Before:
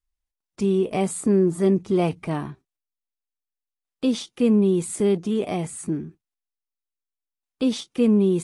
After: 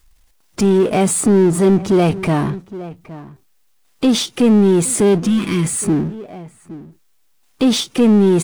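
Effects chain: outdoor echo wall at 140 m, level -26 dB; power-law curve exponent 0.7; spectral repair 5.27–5.64, 380–950 Hz; in parallel at -1.5 dB: limiter -19 dBFS, peak gain reduction 9 dB; on the sum: gain +2.5 dB

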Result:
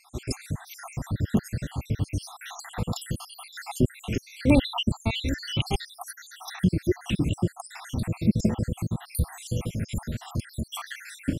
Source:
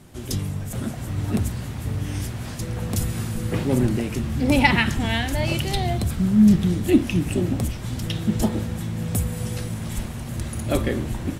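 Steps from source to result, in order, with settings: random spectral dropouts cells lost 75%; in parallel at 0 dB: compressor, threshold -38 dBFS, peak gain reduction 21.5 dB; on the sum: high shelf 11000 Hz -7.5 dB

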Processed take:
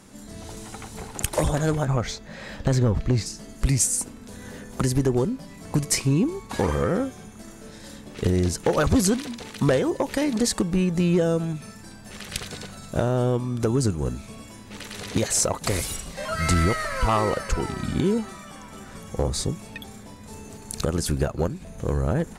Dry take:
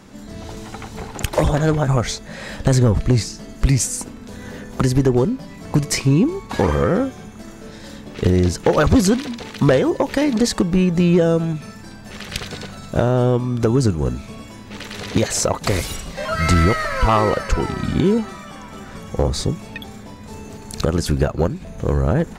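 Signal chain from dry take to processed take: bell 9800 Hz +12.5 dB 0.97 oct, from 1.85 s -5 dB, from 3.26 s +9.5 dB; gain -6 dB

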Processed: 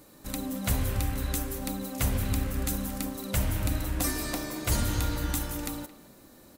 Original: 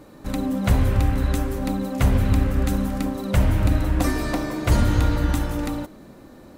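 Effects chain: pre-emphasis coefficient 0.8; speakerphone echo 0.22 s, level -15 dB; gain +4 dB

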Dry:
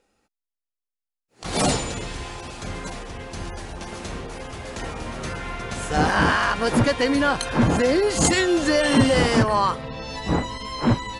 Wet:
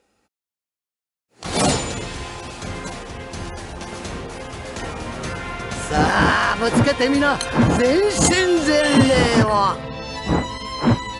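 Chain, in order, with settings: HPF 47 Hz; gain +3 dB

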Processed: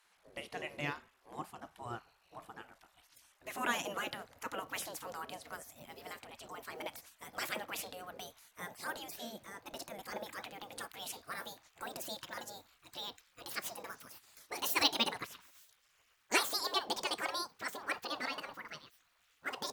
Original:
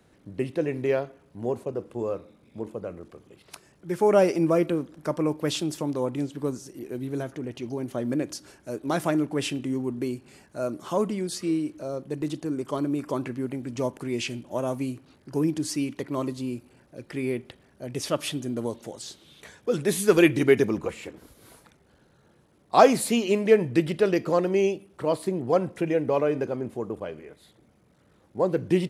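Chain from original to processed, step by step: speed glide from 105% -> 188%; spectral gate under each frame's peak -15 dB weak; gain -2 dB

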